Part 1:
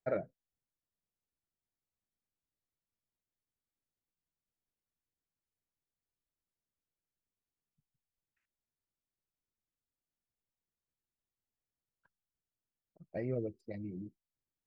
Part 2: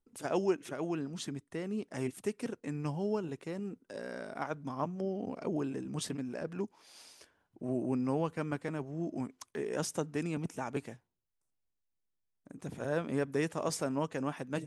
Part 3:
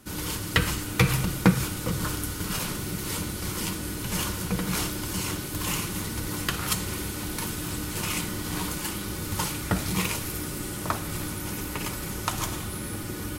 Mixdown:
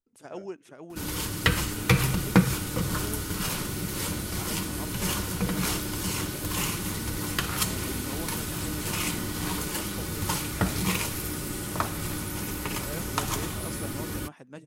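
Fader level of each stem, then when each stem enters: -14.0 dB, -8.0 dB, 0.0 dB; 0.25 s, 0.00 s, 0.90 s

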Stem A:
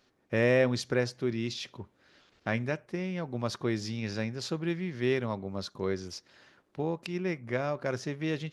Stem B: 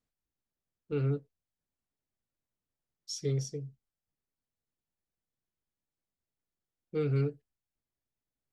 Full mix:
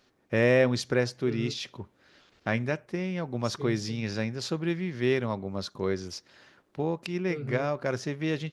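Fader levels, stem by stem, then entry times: +2.5 dB, -6.5 dB; 0.00 s, 0.35 s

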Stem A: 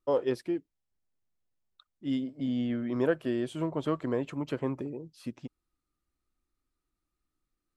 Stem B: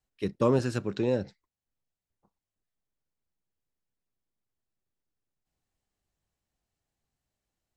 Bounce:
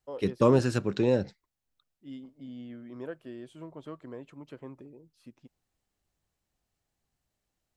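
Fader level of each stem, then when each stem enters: -12.5 dB, +2.5 dB; 0.00 s, 0.00 s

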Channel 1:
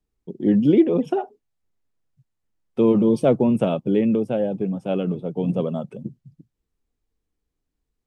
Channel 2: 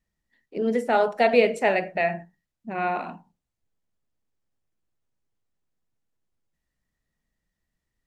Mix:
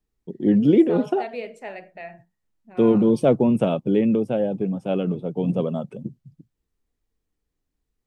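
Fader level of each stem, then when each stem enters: 0.0 dB, -14.0 dB; 0.00 s, 0.00 s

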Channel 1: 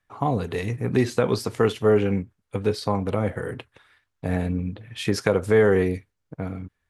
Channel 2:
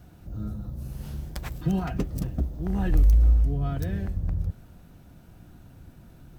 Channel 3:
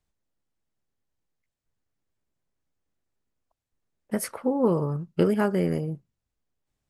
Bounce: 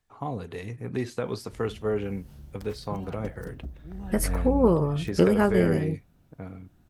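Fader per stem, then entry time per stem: -9.0 dB, -11.5 dB, +2.0 dB; 0.00 s, 1.25 s, 0.00 s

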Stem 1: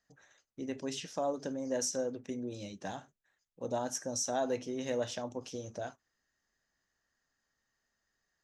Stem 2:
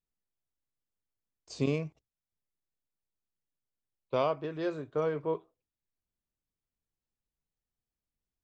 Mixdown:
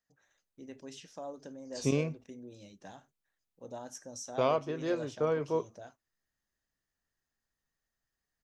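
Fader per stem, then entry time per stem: -9.0 dB, +0.5 dB; 0.00 s, 0.25 s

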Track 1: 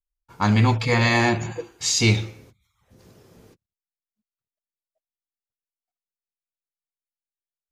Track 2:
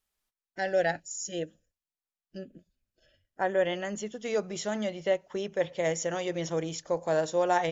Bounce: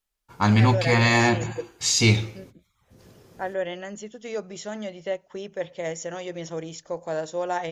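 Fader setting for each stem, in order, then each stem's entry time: 0.0 dB, -2.0 dB; 0.00 s, 0.00 s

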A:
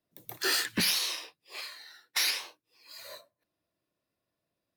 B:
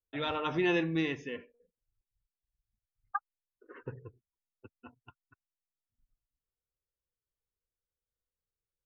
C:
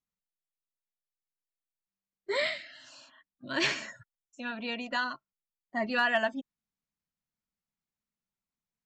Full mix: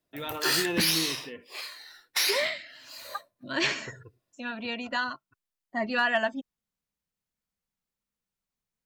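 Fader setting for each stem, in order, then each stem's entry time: +2.0 dB, -2.5 dB, +1.5 dB; 0.00 s, 0.00 s, 0.00 s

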